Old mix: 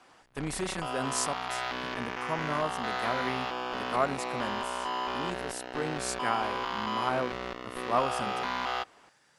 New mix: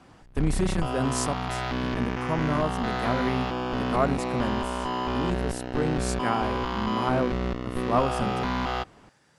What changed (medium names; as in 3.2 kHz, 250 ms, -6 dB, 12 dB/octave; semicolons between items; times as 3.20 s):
background: add tone controls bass +9 dB, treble +1 dB; master: add bass shelf 430 Hz +11.5 dB